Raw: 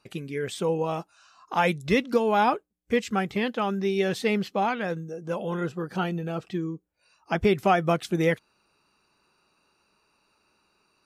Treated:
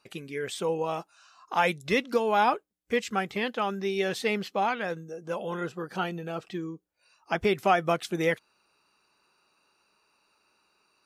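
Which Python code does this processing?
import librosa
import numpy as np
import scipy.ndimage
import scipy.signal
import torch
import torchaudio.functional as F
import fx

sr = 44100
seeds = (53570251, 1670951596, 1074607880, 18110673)

y = fx.low_shelf(x, sr, hz=270.0, db=-10.0)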